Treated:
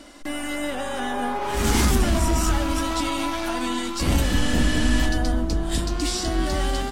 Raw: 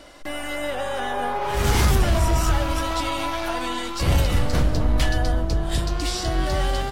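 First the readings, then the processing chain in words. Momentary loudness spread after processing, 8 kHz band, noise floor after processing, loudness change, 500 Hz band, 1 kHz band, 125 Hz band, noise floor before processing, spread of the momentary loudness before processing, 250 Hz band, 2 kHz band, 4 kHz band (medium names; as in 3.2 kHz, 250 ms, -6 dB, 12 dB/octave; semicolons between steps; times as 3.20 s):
7 LU, +3.0 dB, -30 dBFS, -0.5 dB, -1.5 dB, -1.5 dB, -3.0 dB, -30 dBFS, 7 LU, +4.5 dB, +0.5 dB, +0.5 dB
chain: spectral replace 4.25–5.01 s, 1–12 kHz after; ten-band graphic EQ 125 Hz -8 dB, 250 Hz +11 dB, 500 Hz -4 dB, 8 kHz +5 dB; trim -1 dB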